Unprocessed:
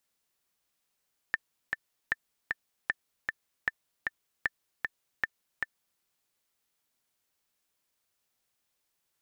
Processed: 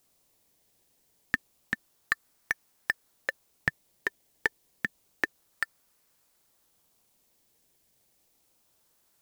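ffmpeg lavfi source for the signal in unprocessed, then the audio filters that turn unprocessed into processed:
-f lavfi -i "aevalsrc='pow(10,(-13.5-3*gte(mod(t,2*60/154),60/154))/20)*sin(2*PI*1780*mod(t,60/154))*exp(-6.91*mod(t,60/154)/0.03)':d=4.67:s=44100"
-filter_complex "[0:a]highshelf=f=2700:g=11,asplit=2[s0][s1];[s1]acrusher=samples=22:mix=1:aa=0.000001:lfo=1:lforange=22:lforate=0.29,volume=0.335[s2];[s0][s2]amix=inputs=2:normalize=0"

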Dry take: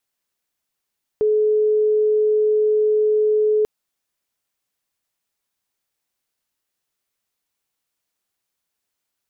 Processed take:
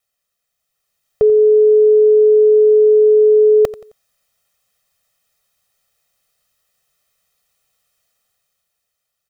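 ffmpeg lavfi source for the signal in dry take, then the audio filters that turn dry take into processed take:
-f lavfi -i "aevalsrc='0.2*sin(2*PI*427*t)':d=2.44:s=44100"
-af "dynaudnorm=f=150:g=13:m=2.66,aecho=1:1:1.6:0.94,aecho=1:1:88|176|264:0.141|0.0494|0.0173"

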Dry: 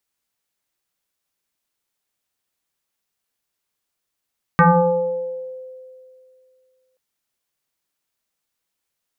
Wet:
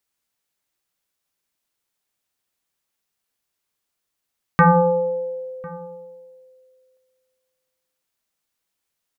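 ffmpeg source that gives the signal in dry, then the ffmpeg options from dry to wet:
-f lavfi -i "aevalsrc='0.422*pow(10,-3*t/2.43)*sin(2*PI*515*t+3.3*pow(10,-3*t/1.28)*sin(2*PI*0.66*515*t))':d=2.38:s=44100"
-filter_complex "[0:a]asplit=2[s0][s1];[s1]adelay=1050,volume=0.0794,highshelf=f=4000:g=-23.6[s2];[s0][s2]amix=inputs=2:normalize=0"

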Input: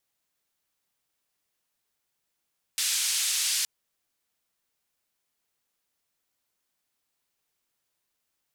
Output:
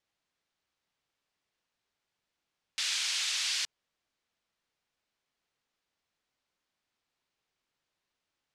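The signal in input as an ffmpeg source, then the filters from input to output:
-f lavfi -i "anoisesrc=c=white:d=0.87:r=44100:seed=1,highpass=f=2900,lowpass=f=9000,volume=-16.6dB"
-af "lowpass=4800"

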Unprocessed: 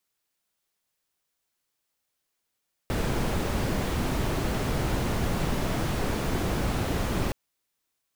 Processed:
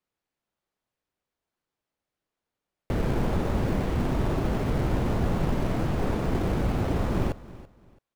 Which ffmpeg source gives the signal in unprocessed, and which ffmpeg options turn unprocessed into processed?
-f lavfi -i "anoisesrc=c=brown:a=0.221:d=4.42:r=44100:seed=1"
-filter_complex "[0:a]lowpass=f=1400:p=1,asplit=2[s0][s1];[s1]acrusher=samples=20:mix=1:aa=0.000001:lfo=1:lforange=12:lforate=1.1,volume=0.335[s2];[s0][s2]amix=inputs=2:normalize=0,aecho=1:1:333|666:0.119|0.0309"

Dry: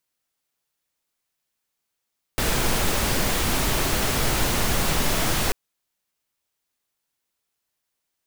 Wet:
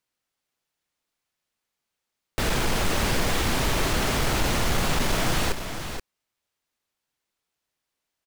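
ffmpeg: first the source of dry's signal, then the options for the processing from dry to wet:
-f lavfi -i "anoisesrc=c=pink:a=0.407:d=3.14:r=44100:seed=1"
-af "highshelf=f=8000:g=-9.5,asoftclip=type=hard:threshold=0.119,aecho=1:1:477:0.376"

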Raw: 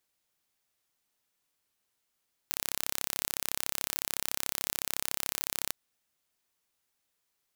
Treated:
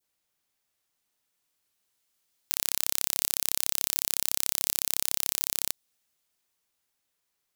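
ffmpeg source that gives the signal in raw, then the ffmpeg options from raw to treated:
-f lavfi -i "aevalsrc='0.631*eq(mod(n,1305),0)':d=3.21:s=44100"
-filter_complex "[0:a]adynamicequalizer=threshold=0.00178:dfrequency=1600:dqfactor=0.77:tfrequency=1600:tqfactor=0.77:attack=5:release=100:ratio=0.375:range=2:mode=cutabove:tftype=bell,acrossover=split=2900[s0][s1];[s1]dynaudnorm=f=220:g=17:m=3.76[s2];[s0][s2]amix=inputs=2:normalize=0"

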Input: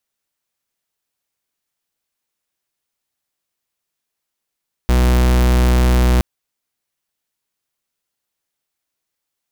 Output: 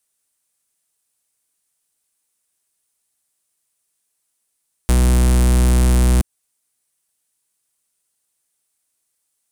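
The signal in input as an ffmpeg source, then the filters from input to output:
-f lavfi -i "aevalsrc='0.237*(2*lt(mod(61.8*t,1),0.44)-1)':d=1.32:s=44100"
-filter_complex "[0:a]equalizer=f=9200:t=o:w=0.87:g=15,acrossover=split=320[s0][s1];[s1]acompressor=threshold=0.0794:ratio=3[s2];[s0][s2]amix=inputs=2:normalize=0"

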